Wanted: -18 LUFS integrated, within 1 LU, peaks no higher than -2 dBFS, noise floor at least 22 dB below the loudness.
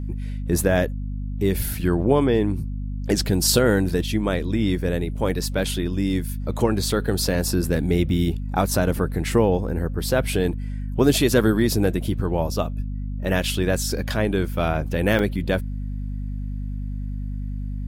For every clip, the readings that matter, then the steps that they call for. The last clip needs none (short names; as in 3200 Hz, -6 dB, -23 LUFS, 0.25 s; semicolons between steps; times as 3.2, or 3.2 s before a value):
dropouts 1; longest dropout 3.0 ms; hum 50 Hz; harmonics up to 250 Hz; hum level -26 dBFS; loudness -23.0 LUFS; peak -5.0 dBFS; loudness target -18.0 LUFS
-> interpolate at 15.19, 3 ms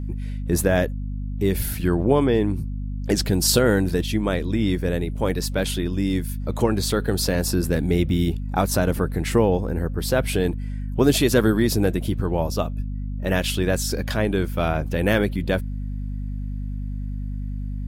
dropouts 0; hum 50 Hz; harmonics up to 250 Hz; hum level -26 dBFS
-> notches 50/100/150/200/250 Hz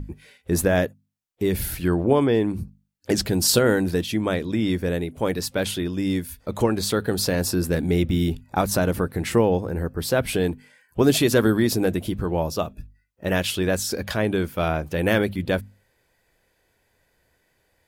hum none; loudness -23.0 LUFS; peak -5.5 dBFS; loudness target -18.0 LUFS
-> gain +5 dB; limiter -2 dBFS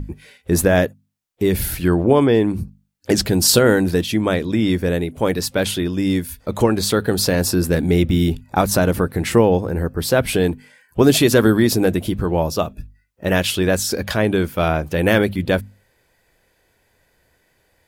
loudness -18.0 LUFS; peak -2.0 dBFS; noise floor -64 dBFS